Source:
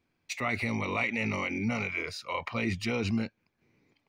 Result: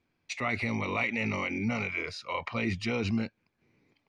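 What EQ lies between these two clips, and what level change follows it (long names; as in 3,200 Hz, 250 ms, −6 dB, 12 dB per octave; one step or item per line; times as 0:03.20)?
low-pass filter 6,600 Hz 12 dB per octave
0.0 dB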